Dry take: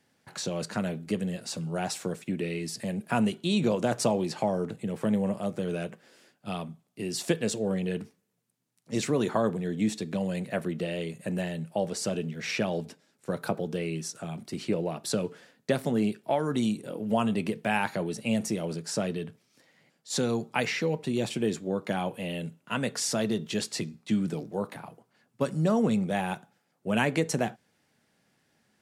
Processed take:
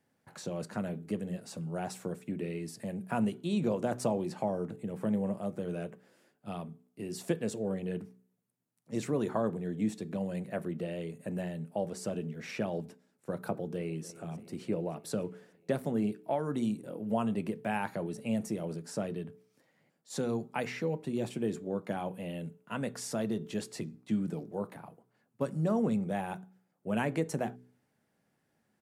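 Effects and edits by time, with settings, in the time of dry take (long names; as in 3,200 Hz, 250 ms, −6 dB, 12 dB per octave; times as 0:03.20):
0:13.51–0:14.07: delay throw 290 ms, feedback 70%, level −17.5 dB
whole clip: parametric band 4,300 Hz −9 dB 2.4 octaves; hum removal 62.03 Hz, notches 7; level −4 dB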